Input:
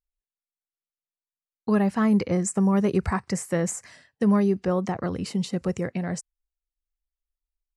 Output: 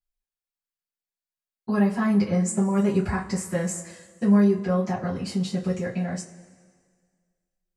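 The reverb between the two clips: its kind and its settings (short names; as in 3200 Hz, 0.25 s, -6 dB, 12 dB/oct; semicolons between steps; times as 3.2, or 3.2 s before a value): two-slope reverb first 0.21 s, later 1.8 s, from -22 dB, DRR -9 dB; gain -10 dB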